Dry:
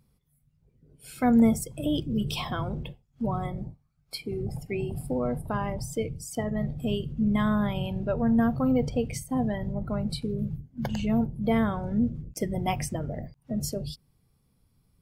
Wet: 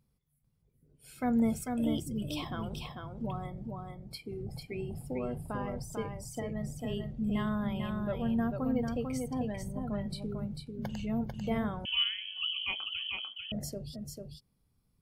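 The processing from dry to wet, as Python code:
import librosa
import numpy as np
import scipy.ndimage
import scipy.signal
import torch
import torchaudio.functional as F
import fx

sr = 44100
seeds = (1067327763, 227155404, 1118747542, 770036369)

p1 = x + fx.echo_single(x, sr, ms=445, db=-4.5, dry=0)
p2 = fx.freq_invert(p1, sr, carrier_hz=3200, at=(11.85, 13.52))
y = p2 * 10.0 ** (-8.0 / 20.0)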